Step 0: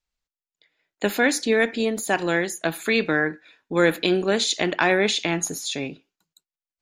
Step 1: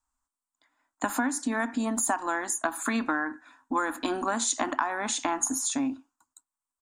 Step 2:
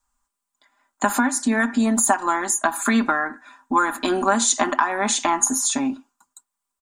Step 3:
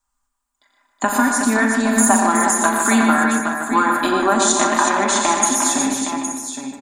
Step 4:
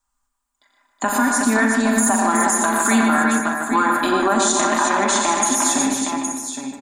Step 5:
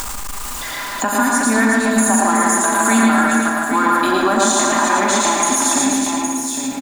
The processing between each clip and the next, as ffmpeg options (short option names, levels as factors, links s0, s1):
-af "firequalizer=gain_entry='entry(110,0);entry(170,-24);entry(250,12);entry(410,-16);entry(690,3);entry(1000,14);entry(2200,-10);entry(4200,-10);entry(8200,9);entry(12000,-8)':delay=0.05:min_phase=1,acompressor=threshold=0.0631:ratio=10,highshelf=f=11000:g=8.5"
-af "aecho=1:1:5:0.67,volume=2.11"
-filter_complex "[0:a]asplit=2[s0][s1];[s1]adelay=151,lowpass=f=3300:p=1,volume=0.501,asplit=2[s2][s3];[s3]adelay=151,lowpass=f=3300:p=1,volume=0.38,asplit=2[s4][s5];[s5]adelay=151,lowpass=f=3300:p=1,volume=0.38,asplit=2[s6][s7];[s7]adelay=151,lowpass=f=3300:p=1,volume=0.38,asplit=2[s8][s9];[s9]adelay=151,lowpass=f=3300:p=1,volume=0.38[s10];[s2][s4][s6][s8][s10]amix=inputs=5:normalize=0[s11];[s0][s11]amix=inputs=2:normalize=0,dynaudnorm=f=200:g=9:m=3.76,asplit=2[s12][s13];[s13]aecho=0:1:41|88|120|369|815|874:0.316|0.355|0.422|0.473|0.335|0.2[s14];[s12][s14]amix=inputs=2:normalize=0,volume=0.841"
-af "alimiter=limit=0.447:level=0:latency=1:release=40"
-af "aeval=exprs='val(0)+0.5*0.0237*sgn(val(0))':c=same,aecho=1:1:110:0.708,acompressor=mode=upward:threshold=0.141:ratio=2.5"